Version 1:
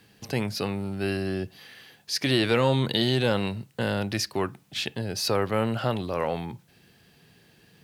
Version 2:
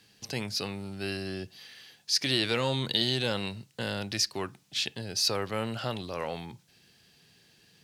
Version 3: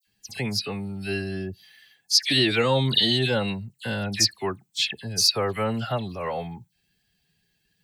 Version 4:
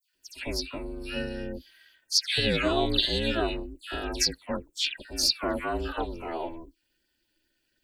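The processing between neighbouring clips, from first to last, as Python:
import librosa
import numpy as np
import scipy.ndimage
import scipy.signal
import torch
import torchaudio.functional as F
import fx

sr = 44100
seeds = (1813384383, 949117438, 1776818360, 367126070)

y1 = fx.peak_eq(x, sr, hz=5500.0, db=10.5, octaves=2.1)
y1 = y1 * librosa.db_to_amplitude(-7.5)
y2 = fx.bin_expand(y1, sr, power=1.5)
y2 = fx.dispersion(y2, sr, late='lows', ms=70.0, hz=2500.0)
y2 = y2 * librosa.db_to_amplitude(9.0)
y3 = fx.notch_comb(y2, sr, f0_hz=1000.0)
y3 = fx.dispersion(y3, sr, late='lows', ms=71.0, hz=1700.0)
y3 = y3 * np.sin(2.0 * np.pi * 160.0 * np.arange(len(y3)) / sr)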